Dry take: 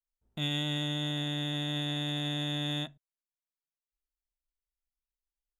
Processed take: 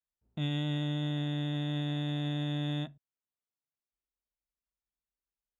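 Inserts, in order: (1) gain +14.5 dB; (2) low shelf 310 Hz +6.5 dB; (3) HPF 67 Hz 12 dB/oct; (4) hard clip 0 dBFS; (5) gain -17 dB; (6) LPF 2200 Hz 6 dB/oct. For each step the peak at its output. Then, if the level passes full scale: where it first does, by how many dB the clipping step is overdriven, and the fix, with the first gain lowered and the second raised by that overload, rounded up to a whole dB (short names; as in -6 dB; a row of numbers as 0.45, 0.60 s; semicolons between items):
-7.0, -4.0, -5.0, -5.0, -22.0, -22.5 dBFS; no overload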